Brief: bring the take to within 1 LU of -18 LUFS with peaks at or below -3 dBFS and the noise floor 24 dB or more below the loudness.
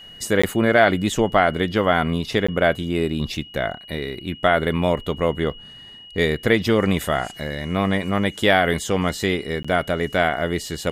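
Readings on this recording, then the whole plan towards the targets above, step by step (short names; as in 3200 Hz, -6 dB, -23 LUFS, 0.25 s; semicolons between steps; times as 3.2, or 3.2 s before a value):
dropouts 3; longest dropout 15 ms; steady tone 2900 Hz; tone level -40 dBFS; loudness -21.0 LUFS; peak -3.0 dBFS; loudness target -18.0 LUFS
-> interpolate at 0.42/2.47/9.63, 15 ms; notch 2900 Hz, Q 30; gain +3 dB; limiter -3 dBFS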